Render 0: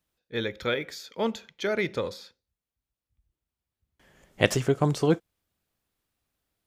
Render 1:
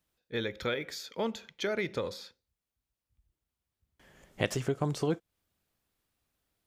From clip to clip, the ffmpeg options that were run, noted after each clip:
-af "acompressor=threshold=-32dB:ratio=2"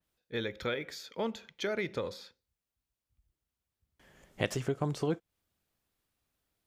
-af "adynamicequalizer=threshold=0.00282:dfrequency=3900:dqfactor=0.7:tfrequency=3900:tqfactor=0.7:attack=5:release=100:ratio=0.375:range=2:mode=cutabove:tftype=highshelf,volume=-1.5dB"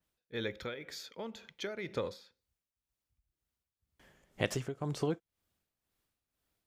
-af "tremolo=f=2:d=0.65"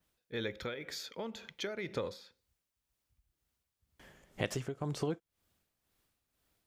-af "acompressor=threshold=-48dB:ratio=1.5,volume=5dB"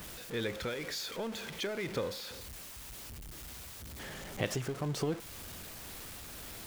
-af "aeval=exprs='val(0)+0.5*0.0106*sgn(val(0))':c=same"

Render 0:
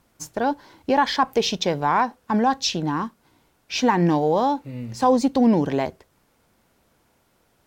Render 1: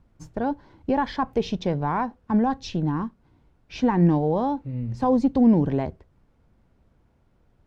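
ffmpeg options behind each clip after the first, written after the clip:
-af "aemphasis=mode=reproduction:type=riaa,volume=-6.5dB"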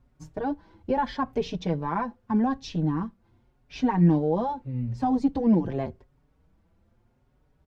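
-filter_complex "[0:a]asplit=2[a][b];[b]adelay=5.1,afreqshift=0.83[c];[a][c]amix=inputs=2:normalize=1"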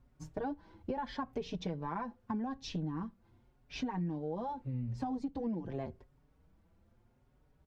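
-af "acompressor=threshold=-31dB:ratio=8,volume=-3dB"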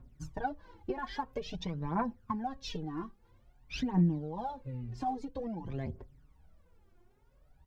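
-af "aphaser=in_gain=1:out_gain=1:delay=2.9:decay=0.71:speed=0.5:type=triangular"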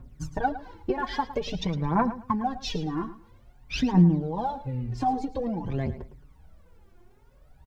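-af "aecho=1:1:109|218:0.2|0.0419,volume=8.5dB"

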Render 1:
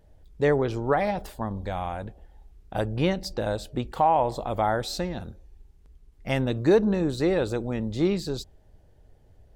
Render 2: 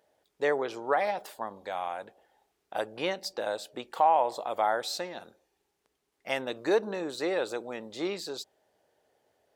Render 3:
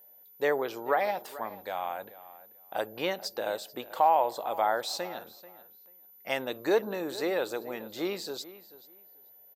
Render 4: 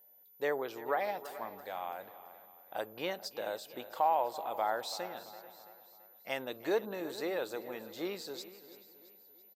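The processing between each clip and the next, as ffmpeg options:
-af "highpass=510,volume=-1dB"
-filter_complex "[0:a]asplit=2[a][b];[b]adelay=437,lowpass=f=4k:p=1,volume=-17dB,asplit=2[c][d];[d]adelay=437,lowpass=f=4k:p=1,volume=0.2[e];[a][c][e]amix=inputs=3:normalize=0,aeval=exprs='val(0)+0.00224*sin(2*PI*14000*n/s)':c=same"
-af "aecho=1:1:334|668|1002|1336|1670:0.158|0.0808|0.0412|0.021|0.0107,volume=-6dB"

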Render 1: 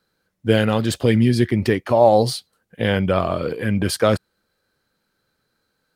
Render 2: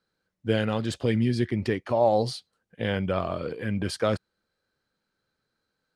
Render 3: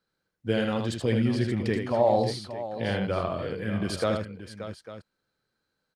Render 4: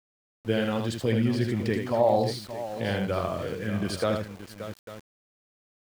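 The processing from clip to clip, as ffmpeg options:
-af "lowpass=7.9k,volume=-8dB"
-af "aecho=1:1:78|577|848:0.562|0.266|0.168,volume=-2dB"
-af "aeval=exprs='val(0)*gte(abs(val(0)),0.0075)':c=same"

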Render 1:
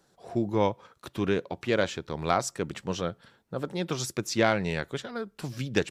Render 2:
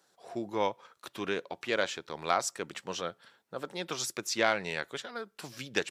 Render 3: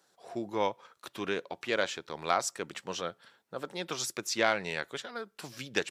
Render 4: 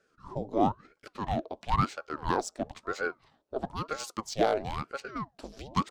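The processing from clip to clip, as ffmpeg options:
-af "highpass=f=750:p=1"
-af anull
-af "adynamicsmooth=sensitivity=6.5:basefreq=5.9k,equalizer=f=125:t=o:w=1:g=7,equalizer=f=250:t=o:w=1:g=-4,equalizer=f=500:t=o:w=1:g=12,equalizer=f=1k:t=o:w=1:g=-3,equalizer=f=2k:t=o:w=1:g=-9,aeval=exprs='val(0)*sin(2*PI*530*n/s+530*0.85/1*sin(2*PI*1*n/s))':c=same"

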